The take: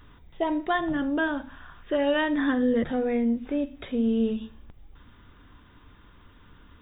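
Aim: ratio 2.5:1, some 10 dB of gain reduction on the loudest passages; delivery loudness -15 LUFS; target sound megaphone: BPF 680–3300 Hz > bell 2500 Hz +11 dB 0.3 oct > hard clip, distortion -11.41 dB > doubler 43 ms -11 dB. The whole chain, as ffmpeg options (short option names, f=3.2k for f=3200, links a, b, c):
-filter_complex "[0:a]acompressor=threshold=-36dB:ratio=2.5,highpass=680,lowpass=3.3k,equalizer=f=2.5k:t=o:w=0.3:g=11,asoftclip=type=hard:threshold=-36dB,asplit=2[a][b];[b]adelay=43,volume=-11dB[c];[a][c]amix=inputs=2:normalize=0,volume=28dB"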